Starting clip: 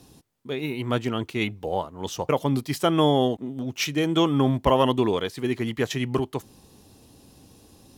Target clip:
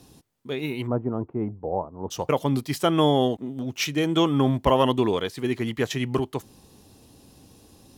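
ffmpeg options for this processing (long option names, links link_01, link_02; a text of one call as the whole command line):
ffmpeg -i in.wav -filter_complex "[0:a]asplit=3[link_01][link_02][link_03];[link_01]afade=type=out:start_time=0.86:duration=0.02[link_04];[link_02]lowpass=frequency=1000:width=0.5412,lowpass=frequency=1000:width=1.3066,afade=type=in:start_time=0.86:duration=0.02,afade=type=out:start_time=2.1:duration=0.02[link_05];[link_03]afade=type=in:start_time=2.1:duration=0.02[link_06];[link_04][link_05][link_06]amix=inputs=3:normalize=0" out.wav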